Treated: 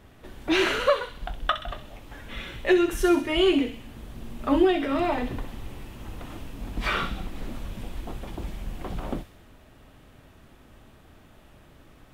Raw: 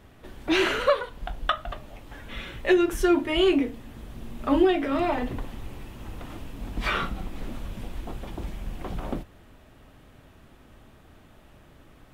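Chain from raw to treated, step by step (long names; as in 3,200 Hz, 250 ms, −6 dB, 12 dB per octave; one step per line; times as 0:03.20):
delay with a high-pass on its return 64 ms, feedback 57%, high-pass 2,700 Hz, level −6 dB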